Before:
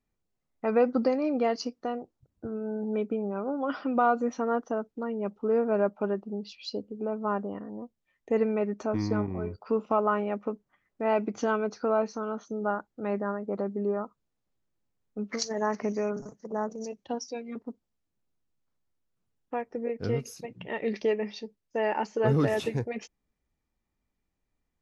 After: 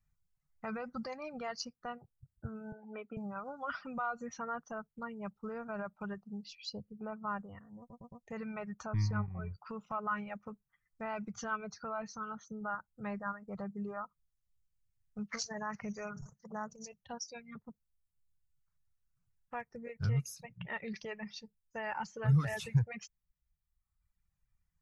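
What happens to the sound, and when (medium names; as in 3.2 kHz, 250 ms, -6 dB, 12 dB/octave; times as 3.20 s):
2.72–3.17 s: elliptic band-pass 250–2800 Hz
7.79 s: stutter in place 0.11 s, 4 plays
whole clip: reverb removal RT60 1.2 s; peak limiter -22.5 dBFS; FFT filter 160 Hz 0 dB, 290 Hz -26 dB, 1.4 kHz -5 dB, 3.3 kHz -12 dB, 7.1 kHz -6 dB; trim +6 dB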